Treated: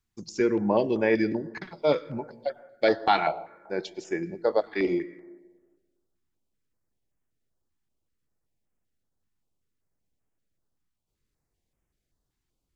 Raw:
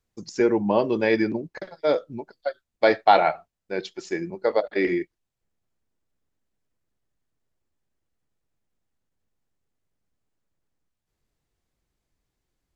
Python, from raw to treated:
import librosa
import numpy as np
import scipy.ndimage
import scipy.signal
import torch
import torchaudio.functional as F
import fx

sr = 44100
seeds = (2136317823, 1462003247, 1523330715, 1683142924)

y = fx.graphic_eq_15(x, sr, hz=(160, 1000, 2500), db=(9, 6, 8), at=(1.48, 2.47))
y = fx.rev_plate(y, sr, seeds[0], rt60_s=1.4, hf_ratio=0.35, predelay_ms=90, drr_db=18.5)
y = fx.filter_held_notch(y, sr, hz=5.2, low_hz=550.0, high_hz=4200.0)
y = F.gain(torch.from_numpy(y), -1.5).numpy()